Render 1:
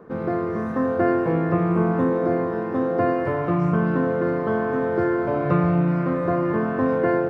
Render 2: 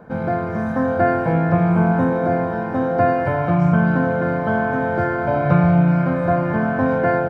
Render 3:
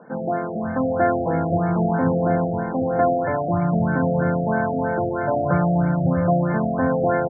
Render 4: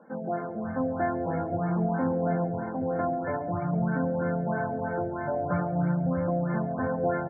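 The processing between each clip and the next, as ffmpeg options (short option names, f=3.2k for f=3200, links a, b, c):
-af "aecho=1:1:1.3:0.68,volume=3.5dB"
-filter_complex "[0:a]acrossover=split=150[a][b];[a]adelay=530[c];[c][b]amix=inputs=2:normalize=0,afftfilt=real='re*lt(b*sr/1024,760*pow(2300/760,0.5+0.5*sin(2*PI*3.1*pts/sr)))':imag='im*lt(b*sr/1024,760*pow(2300/760,0.5+0.5*sin(2*PI*3.1*pts/sr)))':win_size=1024:overlap=0.75,volume=-1.5dB"
-af "flanger=delay=3.6:depth=8.9:regen=-22:speed=0.48:shape=sinusoidal,aecho=1:1:138:0.141,volume=-4.5dB"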